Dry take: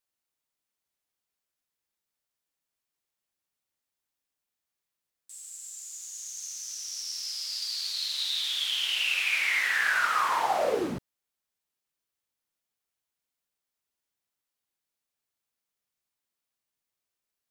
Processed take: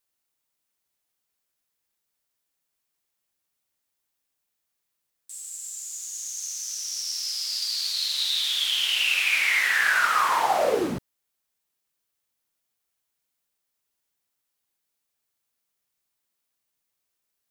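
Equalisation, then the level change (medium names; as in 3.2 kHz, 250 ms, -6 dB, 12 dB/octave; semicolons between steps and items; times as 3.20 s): treble shelf 8.5 kHz +4.5 dB; +4.0 dB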